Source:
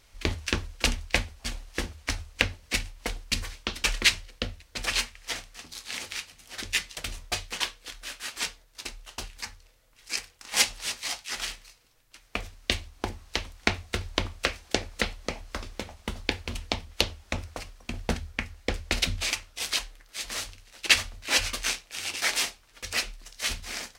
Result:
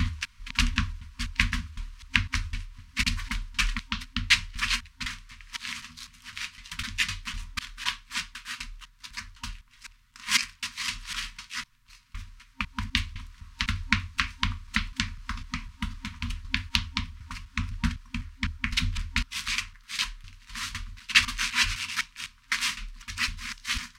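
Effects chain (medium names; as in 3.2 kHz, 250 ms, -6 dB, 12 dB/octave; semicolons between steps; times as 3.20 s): slices played last to first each 253 ms, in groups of 2; treble shelf 5.3 kHz -11 dB; FFT band-reject 260–930 Hz; trim +3 dB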